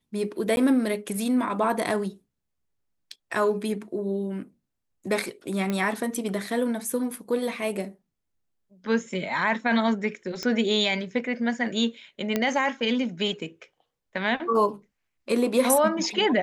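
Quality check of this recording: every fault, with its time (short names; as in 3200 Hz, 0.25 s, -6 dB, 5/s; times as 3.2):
0.56–0.57 gap
5.7 pop -15 dBFS
10.43 pop -16 dBFS
12.36 pop -10 dBFS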